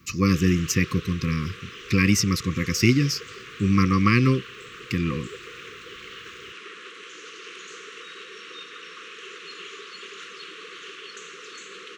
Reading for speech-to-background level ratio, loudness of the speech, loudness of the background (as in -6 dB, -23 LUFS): 17.0 dB, -22.5 LUFS, -39.5 LUFS